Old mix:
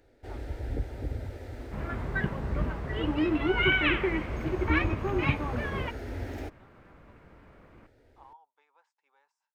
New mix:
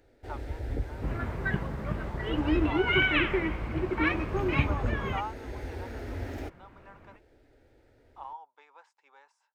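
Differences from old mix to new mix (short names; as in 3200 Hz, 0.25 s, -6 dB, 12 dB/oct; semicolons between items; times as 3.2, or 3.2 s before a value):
speech +11.0 dB; second sound: entry -0.70 s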